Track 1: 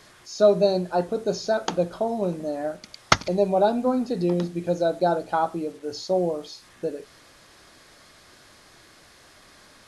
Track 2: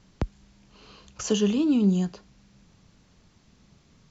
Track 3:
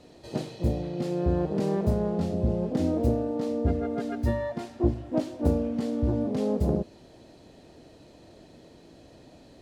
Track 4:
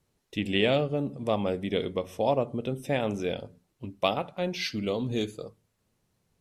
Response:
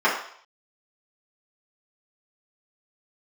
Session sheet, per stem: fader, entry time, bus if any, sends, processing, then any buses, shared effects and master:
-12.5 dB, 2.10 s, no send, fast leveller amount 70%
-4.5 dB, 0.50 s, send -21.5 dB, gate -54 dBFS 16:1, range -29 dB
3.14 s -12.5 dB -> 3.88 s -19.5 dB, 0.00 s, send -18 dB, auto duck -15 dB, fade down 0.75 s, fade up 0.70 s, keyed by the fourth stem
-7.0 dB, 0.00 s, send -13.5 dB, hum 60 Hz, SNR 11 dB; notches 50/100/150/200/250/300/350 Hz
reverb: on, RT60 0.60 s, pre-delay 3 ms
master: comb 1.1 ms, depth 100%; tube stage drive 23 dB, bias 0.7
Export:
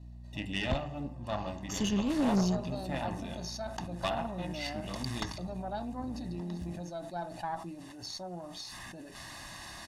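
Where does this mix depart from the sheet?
stem 1 -12.5 dB -> -20.5 dB; reverb return -9.0 dB

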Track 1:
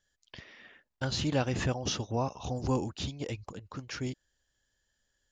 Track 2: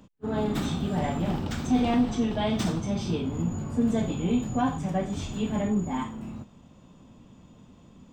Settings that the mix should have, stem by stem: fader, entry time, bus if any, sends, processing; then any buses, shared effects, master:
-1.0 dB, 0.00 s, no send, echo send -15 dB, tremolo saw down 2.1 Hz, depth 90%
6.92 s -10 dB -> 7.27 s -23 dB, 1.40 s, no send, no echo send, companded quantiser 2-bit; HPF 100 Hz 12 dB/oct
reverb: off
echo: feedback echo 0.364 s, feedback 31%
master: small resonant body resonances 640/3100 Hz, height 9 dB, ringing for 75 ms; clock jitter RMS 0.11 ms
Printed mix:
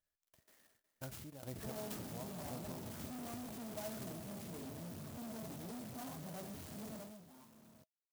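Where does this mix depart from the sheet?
stem 1 -1.0 dB -> -13.0 dB; stem 2 -10.0 dB -> -21.0 dB

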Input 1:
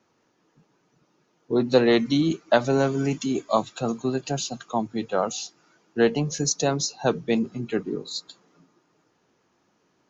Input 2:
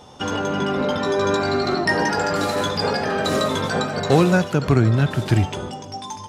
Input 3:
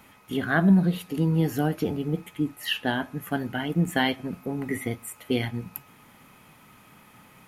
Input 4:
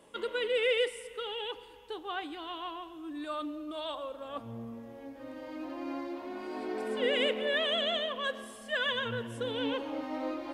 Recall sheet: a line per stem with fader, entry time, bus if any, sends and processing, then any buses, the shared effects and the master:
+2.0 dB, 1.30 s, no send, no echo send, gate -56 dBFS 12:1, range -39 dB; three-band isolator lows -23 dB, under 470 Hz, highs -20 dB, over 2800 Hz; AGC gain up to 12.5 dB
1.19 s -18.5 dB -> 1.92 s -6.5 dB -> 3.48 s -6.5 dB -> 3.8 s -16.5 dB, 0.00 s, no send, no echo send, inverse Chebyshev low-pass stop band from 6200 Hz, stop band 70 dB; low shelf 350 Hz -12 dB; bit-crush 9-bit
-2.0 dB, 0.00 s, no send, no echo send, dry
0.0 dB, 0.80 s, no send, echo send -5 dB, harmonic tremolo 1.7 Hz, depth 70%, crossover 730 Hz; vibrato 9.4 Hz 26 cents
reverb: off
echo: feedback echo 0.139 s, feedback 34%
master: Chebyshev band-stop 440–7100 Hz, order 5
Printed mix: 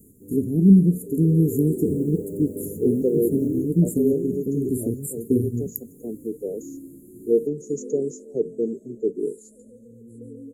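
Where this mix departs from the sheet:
stem 2 -18.5 dB -> -8.5 dB; stem 3 -2.0 dB -> +6.0 dB

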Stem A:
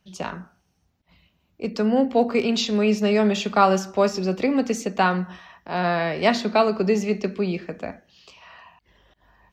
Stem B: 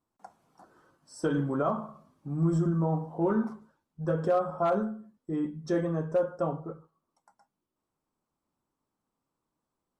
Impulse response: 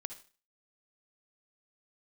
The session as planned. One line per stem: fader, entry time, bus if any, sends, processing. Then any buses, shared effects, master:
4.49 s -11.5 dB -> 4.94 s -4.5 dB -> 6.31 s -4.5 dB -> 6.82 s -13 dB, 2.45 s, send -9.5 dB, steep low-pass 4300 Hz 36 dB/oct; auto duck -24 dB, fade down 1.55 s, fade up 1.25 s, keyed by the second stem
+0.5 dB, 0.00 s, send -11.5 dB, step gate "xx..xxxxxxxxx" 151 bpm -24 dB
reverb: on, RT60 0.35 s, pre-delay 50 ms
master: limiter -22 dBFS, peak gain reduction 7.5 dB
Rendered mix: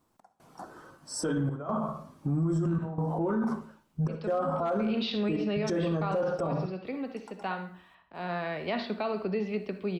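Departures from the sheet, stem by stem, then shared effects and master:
stem B +0.5 dB -> +8.0 dB; reverb return +10.0 dB

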